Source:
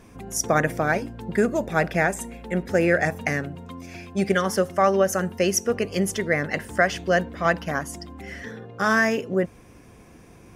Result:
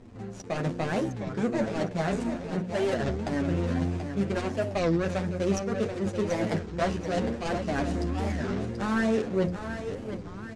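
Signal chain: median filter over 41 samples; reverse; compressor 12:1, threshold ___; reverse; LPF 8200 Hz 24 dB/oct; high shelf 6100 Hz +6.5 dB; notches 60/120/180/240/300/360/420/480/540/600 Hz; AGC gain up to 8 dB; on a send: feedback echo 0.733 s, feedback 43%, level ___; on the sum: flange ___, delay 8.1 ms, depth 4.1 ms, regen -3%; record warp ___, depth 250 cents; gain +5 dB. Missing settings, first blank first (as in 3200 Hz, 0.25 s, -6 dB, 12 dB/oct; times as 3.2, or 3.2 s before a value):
-34 dBFS, -8 dB, 0.67 Hz, 33 1/3 rpm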